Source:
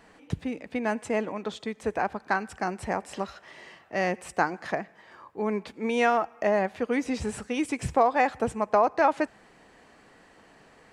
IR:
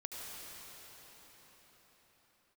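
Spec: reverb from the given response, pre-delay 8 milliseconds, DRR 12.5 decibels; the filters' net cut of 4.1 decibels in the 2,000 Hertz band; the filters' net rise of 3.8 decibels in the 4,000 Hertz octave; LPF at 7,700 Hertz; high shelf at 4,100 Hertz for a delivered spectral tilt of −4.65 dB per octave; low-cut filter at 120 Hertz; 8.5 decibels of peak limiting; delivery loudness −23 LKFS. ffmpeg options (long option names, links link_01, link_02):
-filter_complex "[0:a]highpass=120,lowpass=7700,equalizer=frequency=2000:width_type=o:gain=-7.5,equalizer=frequency=4000:width_type=o:gain=4.5,highshelf=frequency=4100:gain=6,alimiter=limit=-18dB:level=0:latency=1,asplit=2[link_01][link_02];[1:a]atrim=start_sample=2205,adelay=8[link_03];[link_02][link_03]afir=irnorm=-1:irlink=0,volume=-12.5dB[link_04];[link_01][link_04]amix=inputs=2:normalize=0,volume=8dB"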